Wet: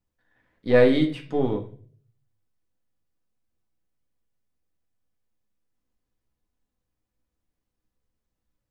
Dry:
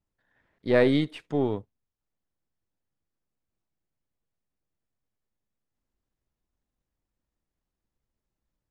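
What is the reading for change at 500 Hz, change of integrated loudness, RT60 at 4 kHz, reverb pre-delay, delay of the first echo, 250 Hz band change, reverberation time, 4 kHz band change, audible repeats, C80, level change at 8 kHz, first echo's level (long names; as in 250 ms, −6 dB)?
+4.0 dB, +3.0 dB, 0.40 s, 4 ms, no echo audible, +3.0 dB, 0.45 s, +2.0 dB, no echo audible, 15.5 dB, can't be measured, no echo audible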